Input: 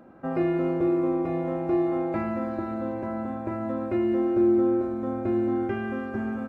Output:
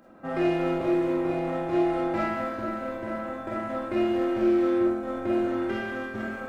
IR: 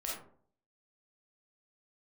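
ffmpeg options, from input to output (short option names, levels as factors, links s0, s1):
-filter_complex "[0:a]highshelf=f=2000:g=11,asplit=2[s0][s1];[s1]acrusher=bits=3:mix=0:aa=0.5,volume=0.282[s2];[s0][s2]amix=inputs=2:normalize=0[s3];[1:a]atrim=start_sample=2205,afade=t=out:st=0.19:d=0.01,atrim=end_sample=8820[s4];[s3][s4]afir=irnorm=-1:irlink=0,volume=0.75"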